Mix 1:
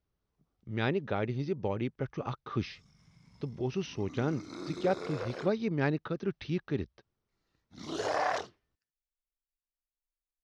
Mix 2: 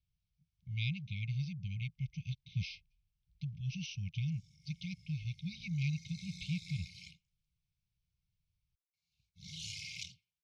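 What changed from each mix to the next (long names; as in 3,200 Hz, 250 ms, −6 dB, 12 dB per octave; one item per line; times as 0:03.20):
background: entry +1.65 s
master: add linear-phase brick-wall band-stop 190–2,100 Hz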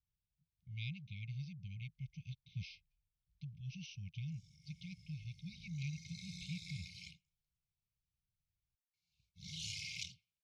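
speech −7.5 dB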